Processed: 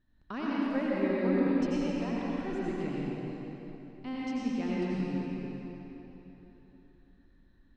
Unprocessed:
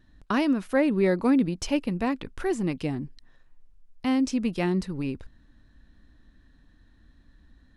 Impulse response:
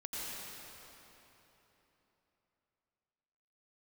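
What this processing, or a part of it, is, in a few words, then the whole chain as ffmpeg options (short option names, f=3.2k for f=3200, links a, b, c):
swimming-pool hall: -filter_complex "[1:a]atrim=start_sample=2205[a];[0:a][a]afir=irnorm=-1:irlink=0,lowpass=5.9k,highshelf=f=5.2k:g=-5,volume=-8dB"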